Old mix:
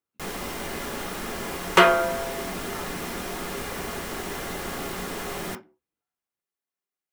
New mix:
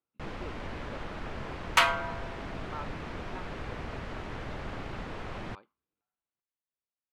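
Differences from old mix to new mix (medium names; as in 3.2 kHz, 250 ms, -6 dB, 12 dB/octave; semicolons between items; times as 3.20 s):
first sound: add low-pass 2.2 kHz 12 dB/octave; second sound: add inverse Chebyshev high-pass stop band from 280 Hz, stop band 50 dB; reverb: off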